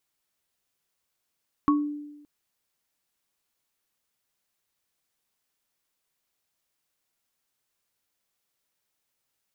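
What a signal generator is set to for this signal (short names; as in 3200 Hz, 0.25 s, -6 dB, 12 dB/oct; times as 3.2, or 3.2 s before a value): sine partials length 0.57 s, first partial 294 Hz, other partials 1110 Hz, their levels -1 dB, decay 1.03 s, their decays 0.22 s, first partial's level -17 dB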